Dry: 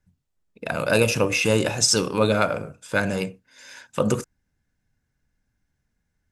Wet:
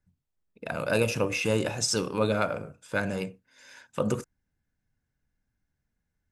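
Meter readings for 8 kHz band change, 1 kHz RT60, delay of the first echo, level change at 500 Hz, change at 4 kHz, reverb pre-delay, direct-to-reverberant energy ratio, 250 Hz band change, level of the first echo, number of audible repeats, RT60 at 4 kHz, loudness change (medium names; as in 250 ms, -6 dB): -8.5 dB, no reverb, no echo, -5.5 dB, -8.0 dB, no reverb, no reverb, -5.5 dB, no echo, no echo, no reverb, -6.5 dB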